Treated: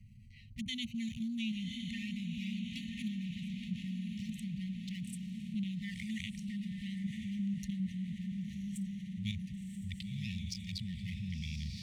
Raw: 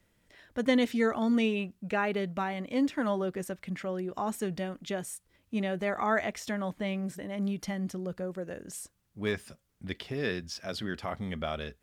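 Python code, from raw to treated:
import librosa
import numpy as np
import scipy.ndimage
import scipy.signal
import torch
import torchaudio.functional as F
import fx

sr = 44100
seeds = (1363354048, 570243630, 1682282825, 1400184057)

y = fx.wiener(x, sr, points=25)
y = fx.highpass(y, sr, hz=48.0, slope=6)
y = fx.tone_stack(y, sr, knobs='6-0-2')
y = fx.level_steps(y, sr, step_db=10)
y = fx.env_flanger(y, sr, rest_ms=9.4, full_db=-53.5)
y = fx.brickwall_bandstop(y, sr, low_hz=230.0, high_hz=1800.0)
y = fx.echo_diffused(y, sr, ms=1059, feedback_pct=52, wet_db=-7.0)
y = fx.env_flatten(y, sr, amount_pct=50)
y = y * librosa.db_to_amplitude(16.5)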